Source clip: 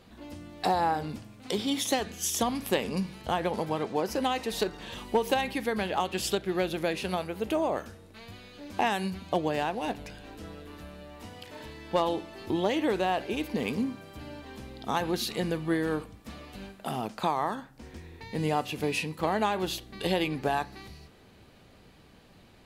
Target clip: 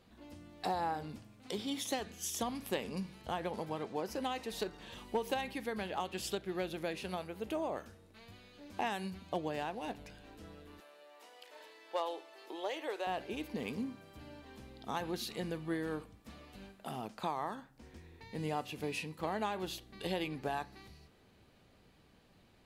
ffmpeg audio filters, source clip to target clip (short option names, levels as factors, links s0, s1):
-filter_complex "[0:a]asettb=1/sr,asplit=3[s0][s1][s2];[s0]atrim=end=10.804[s3];[s1]atrim=start=10.8:end=13.07,asetpts=PTS-STARTPTS,afade=t=in:d=0.004:c=qsin,afade=t=out:st=2.266:d=0.004:c=qsin,highpass=f=420:w=0.5412,highpass=f=420:w=1.3066[s4];[s2]atrim=start=13.066[s5];[s3][s4]acrossfade=d=0.004:c1=hsin:c2=qsin[s6];[s6][s5]acrossfade=d=0.004:c1=qsin:c2=hsin,volume=0.355"